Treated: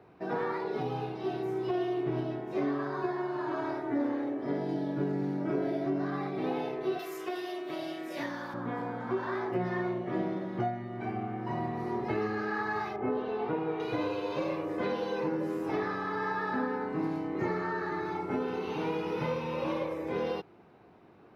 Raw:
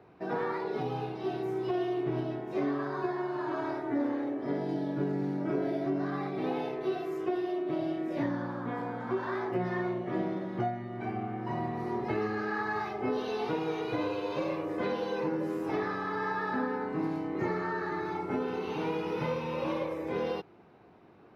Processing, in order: 6.99–8.54 s: tilt EQ +4 dB/octave; 12.96–13.80 s: low-pass 1.9 kHz 12 dB/octave

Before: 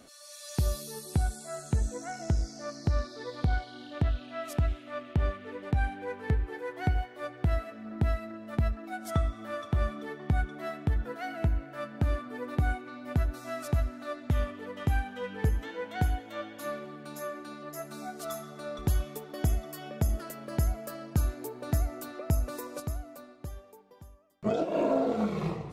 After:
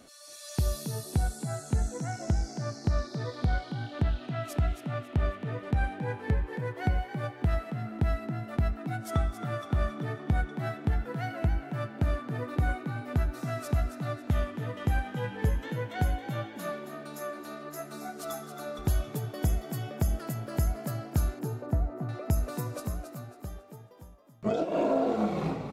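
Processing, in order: 21.39–22.09 s: low-pass 1.1 kHz 12 dB/octave; frequency-shifting echo 273 ms, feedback 32%, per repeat +62 Hz, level -9 dB

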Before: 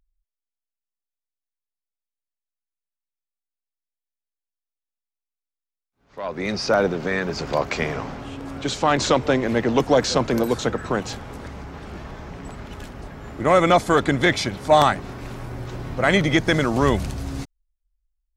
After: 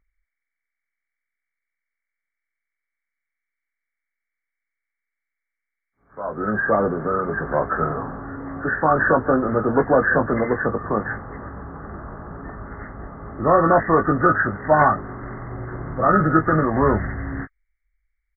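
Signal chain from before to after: knee-point frequency compression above 1.1 kHz 4:1; doubling 19 ms -6.5 dB

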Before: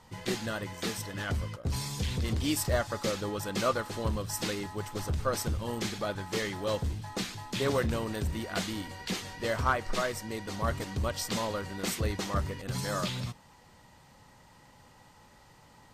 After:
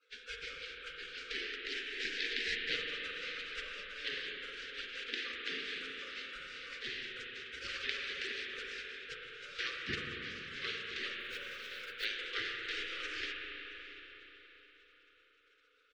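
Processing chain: Chebyshev band-stop 370–1700 Hz, order 4; spectral gate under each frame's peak -30 dB weak; low-pass 3.7 kHz 24 dB/octave; 11.20–12.05 s: short-mantissa float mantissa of 2-bit; delay 674 ms -21.5 dB; reverberation RT60 4.3 s, pre-delay 34 ms, DRR -1 dB; trim +15 dB

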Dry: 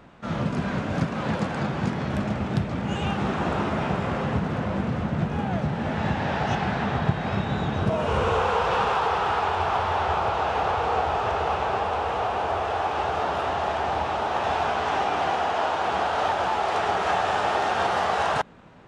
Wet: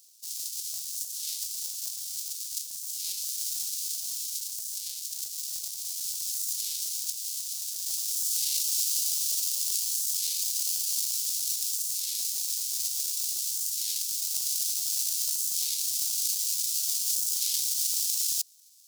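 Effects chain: square wave that keeps the level; inverse Chebyshev high-pass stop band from 1.6 kHz, stop band 60 dB; warped record 33 1/3 rpm, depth 250 cents; trim +4 dB

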